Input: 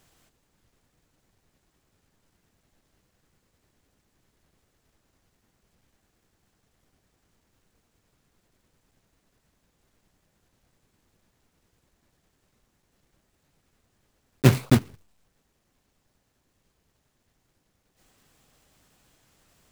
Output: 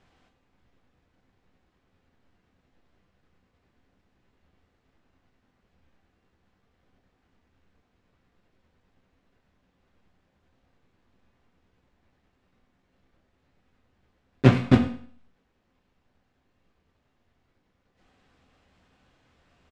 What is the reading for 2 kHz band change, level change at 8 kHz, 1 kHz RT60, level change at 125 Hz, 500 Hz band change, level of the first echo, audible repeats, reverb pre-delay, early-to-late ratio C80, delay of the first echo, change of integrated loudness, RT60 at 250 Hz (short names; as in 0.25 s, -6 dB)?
+0.5 dB, under -10 dB, 0.50 s, -0.5 dB, +1.5 dB, -17.5 dB, 1, 4 ms, 13.0 dB, 0.102 s, +0.5 dB, 0.50 s